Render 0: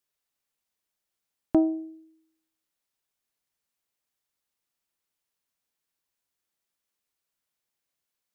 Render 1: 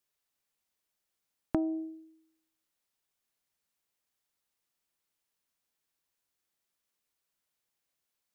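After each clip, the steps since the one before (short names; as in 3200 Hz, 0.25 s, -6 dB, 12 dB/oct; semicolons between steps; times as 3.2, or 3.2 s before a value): compressor 12:1, threshold -26 dBFS, peak gain reduction 10.5 dB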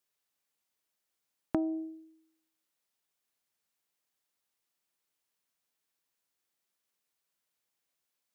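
low shelf 80 Hz -10.5 dB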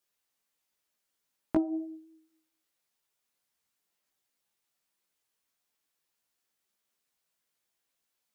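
chorus voices 4, 0.92 Hz, delay 16 ms, depth 3 ms; gain +5 dB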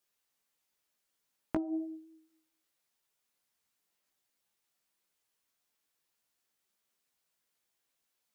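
compressor, threshold -29 dBFS, peak gain reduction 8 dB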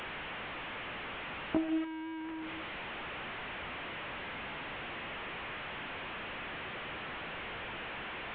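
delta modulation 16 kbps, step -37 dBFS; gain +2.5 dB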